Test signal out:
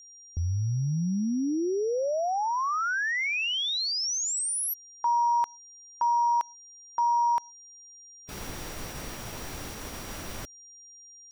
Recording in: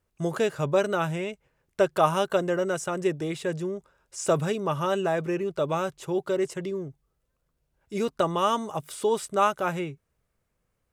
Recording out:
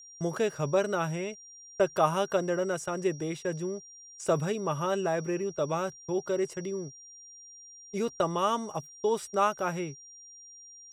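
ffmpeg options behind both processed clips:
ffmpeg -i in.wav -af "highshelf=frequency=2400:gain=-2.5,agate=range=-36dB:threshold=-36dB:ratio=16:detection=peak,aeval=exprs='val(0)+0.00562*sin(2*PI*5700*n/s)':channel_layout=same,volume=-3dB" out.wav

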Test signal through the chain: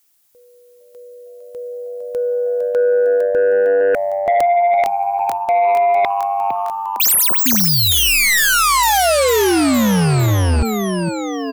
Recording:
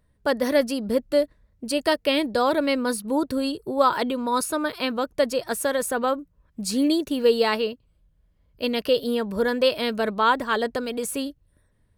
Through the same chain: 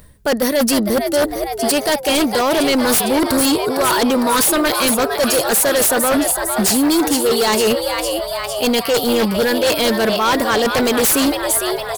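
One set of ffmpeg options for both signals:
ffmpeg -i in.wav -filter_complex "[0:a]areverse,acompressor=threshold=-32dB:ratio=12,areverse,aeval=exprs='0.141*(cos(1*acos(clip(val(0)/0.141,-1,1)))-cos(1*PI/2))+0.00126*(cos(4*acos(clip(val(0)/0.141,-1,1)))-cos(4*PI/2))':channel_layout=same,crystalizer=i=2:c=0,asplit=9[link_01][link_02][link_03][link_04][link_05][link_06][link_07][link_08][link_09];[link_02]adelay=456,afreqshift=98,volume=-9dB[link_10];[link_03]adelay=912,afreqshift=196,volume=-12.9dB[link_11];[link_04]adelay=1368,afreqshift=294,volume=-16.8dB[link_12];[link_05]adelay=1824,afreqshift=392,volume=-20.6dB[link_13];[link_06]adelay=2280,afreqshift=490,volume=-24.5dB[link_14];[link_07]adelay=2736,afreqshift=588,volume=-28.4dB[link_15];[link_08]adelay=3192,afreqshift=686,volume=-32.3dB[link_16];[link_09]adelay=3648,afreqshift=784,volume=-36.1dB[link_17];[link_01][link_10][link_11][link_12][link_13][link_14][link_15][link_16][link_17]amix=inputs=9:normalize=0,aeval=exprs='0.282*sin(PI/2*7.94*val(0)/0.282)':channel_layout=same" out.wav

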